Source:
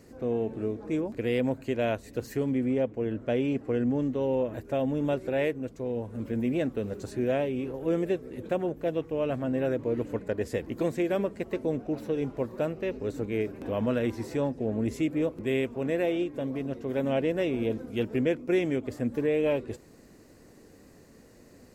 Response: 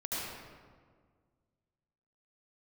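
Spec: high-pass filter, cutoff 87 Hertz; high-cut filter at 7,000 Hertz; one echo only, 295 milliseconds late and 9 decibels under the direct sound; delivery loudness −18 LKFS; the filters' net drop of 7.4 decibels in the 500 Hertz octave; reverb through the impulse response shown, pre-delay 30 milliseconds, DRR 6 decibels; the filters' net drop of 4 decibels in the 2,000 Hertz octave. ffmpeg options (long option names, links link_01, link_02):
-filter_complex "[0:a]highpass=87,lowpass=7000,equalizer=frequency=500:width_type=o:gain=-9,equalizer=frequency=2000:width_type=o:gain=-4.5,aecho=1:1:295:0.355,asplit=2[link_01][link_02];[1:a]atrim=start_sample=2205,adelay=30[link_03];[link_02][link_03]afir=irnorm=-1:irlink=0,volume=-10.5dB[link_04];[link_01][link_04]amix=inputs=2:normalize=0,volume=14.5dB"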